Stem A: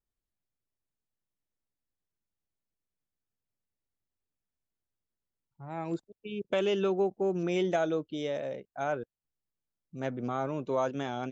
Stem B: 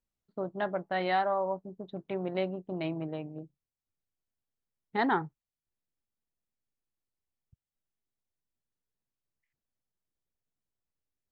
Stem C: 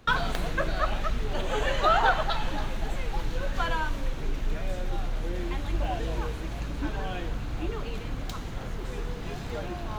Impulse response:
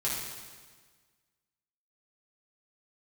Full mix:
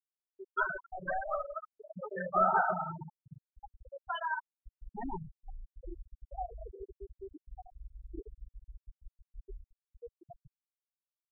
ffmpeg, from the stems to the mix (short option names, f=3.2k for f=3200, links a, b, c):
-filter_complex "[0:a]acompressor=threshold=-30dB:ratio=6,alimiter=level_in=9dB:limit=-24dB:level=0:latency=1:release=172,volume=-9dB,volume=-12dB,asplit=2[a][b];[b]volume=-4.5dB[c];[1:a]asubboost=boost=7:cutoff=120,acrusher=bits=3:mode=log:mix=0:aa=0.000001,aeval=exprs='clip(val(0),-1,0.0141)':c=same,volume=-5.5dB,asplit=3[d][e][f];[e]volume=-12.5dB[g];[2:a]acrossover=split=360[h][i];[h]acompressor=threshold=-45dB:ratio=2.5[j];[j][i]amix=inputs=2:normalize=0,acrusher=bits=6:mix=0:aa=0.5,adelay=500,volume=-7.5dB,asplit=2[k][l];[l]volume=-4.5dB[m];[f]apad=whole_len=462254[n];[k][n]sidechaincompress=threshold=-42dB:ratio=6:attack=37:release=712[o];[3:a]atrim=start_sample=2205[p];[c][g][m]amix=inputs=3:normalize=0[q];[q][p]afir=irnorm=-1:irlink=0[r];[a][d][o][r]amix=inputs=4:normalize=0,afftfilt=real='re*gte(hypot(re,im),0.1)':imag='im*gte(hypot(re,im),0.1)':win_size=1024:overlap=0.75"